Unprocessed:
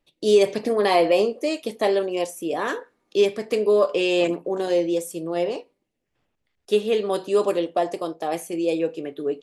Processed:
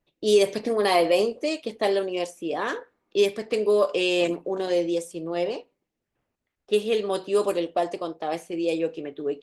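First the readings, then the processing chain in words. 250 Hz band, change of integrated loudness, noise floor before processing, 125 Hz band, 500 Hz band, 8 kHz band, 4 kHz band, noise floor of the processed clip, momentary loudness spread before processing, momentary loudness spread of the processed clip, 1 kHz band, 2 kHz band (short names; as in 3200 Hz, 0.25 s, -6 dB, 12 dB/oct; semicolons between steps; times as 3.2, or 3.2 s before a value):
-2.5 dB, -2.5 dB, -76 dBFS, -2.5 dB, -2.5 dB, -1.0 dB, 0.0 dB, -83 dBFS, 10 LU, 10 LU, -2.0 dB, -1.0 dB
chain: high shelf 3200 Hz +7.5 dB; low-pass opened by the level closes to 1900 Hz, open at -15 dBFS; gain -2.5 dB; Opus 24 kbps 48000 Hz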